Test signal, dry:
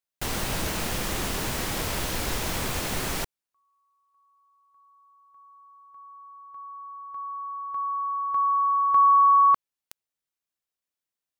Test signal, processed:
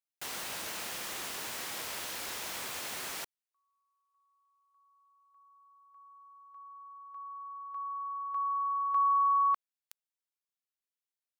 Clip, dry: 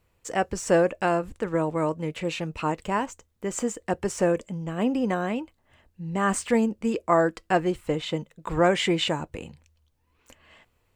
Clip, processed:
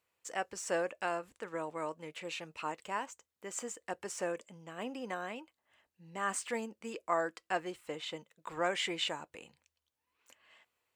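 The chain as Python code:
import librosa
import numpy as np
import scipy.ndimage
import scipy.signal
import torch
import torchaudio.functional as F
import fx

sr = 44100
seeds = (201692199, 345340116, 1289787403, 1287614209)

y = fx.highpass(x, sr, hz=930.0, slope=6)
y = y * 10.0 ** (-7.0 / 20.0)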